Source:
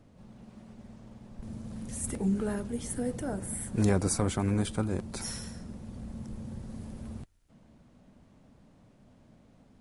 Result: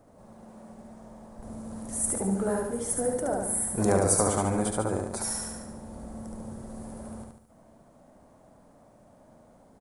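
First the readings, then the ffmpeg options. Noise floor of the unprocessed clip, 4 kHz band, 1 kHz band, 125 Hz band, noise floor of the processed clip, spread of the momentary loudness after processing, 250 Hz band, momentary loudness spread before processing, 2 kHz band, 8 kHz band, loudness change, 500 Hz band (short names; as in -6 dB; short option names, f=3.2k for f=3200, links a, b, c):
-60 dBFS, 0.0 dB, +9.0 dB, -2.0 dB, -58 dBFS, 20 LU, +0.5 dB, 22 LU, +3.0 dB, +9.0 dB, +5.0 dB, +7.0 dB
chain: -af "firequalizer=gain_entry='entry(160,0);entry(630,13);entry(2700,-3);entry(8900,12)':delay=0.05:min_phase=1,aecho=1:1:72|144|216|288|360|432:0.708|0.34|0.163|0.0783|0.0376|0.018,volume=-4dB"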